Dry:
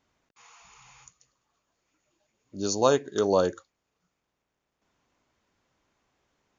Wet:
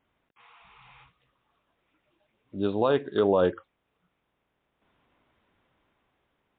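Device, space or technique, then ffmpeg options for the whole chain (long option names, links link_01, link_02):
low-bitrate web radio: -af "dynaudnorm=framelen=240:gausssize=9:maxgain=5.5dB,alimiter=limit=-11.5dB:level=0:latency=1:release=23" -ar 8000 -c:a libmp3lame -b:a 40k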